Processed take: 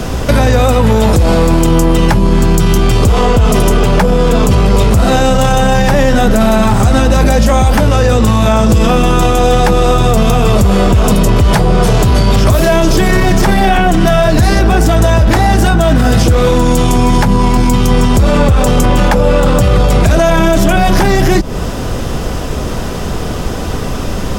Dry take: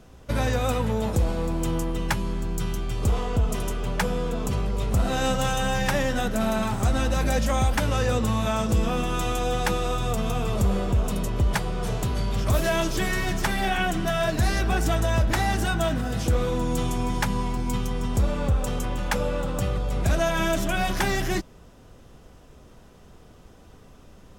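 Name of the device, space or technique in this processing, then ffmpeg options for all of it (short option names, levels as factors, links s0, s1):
mastering chain: -filter_complex "[0:a]equalizer=f=4900:t=o:w=0.23:g=3,acrossover=split=81|1000[s0][s1][s2];[s0]acompressor=threshold=0.02:ratio=4[s3];[s1]acompressor=threshold=0.0282:ratio=4[s4];[s2]acompressor=threshold=0.00794:ratio=4[s5];[s3][s4][s5]amix=inputs=3:normalize=0,acompressor=threshold=0.0224:ratio=2,asoftclip=type=tanh:threshold=0.0562,alimiter=level_in=47.3:limit=0.891:release=50:level=0:latency=1,volume=0.891"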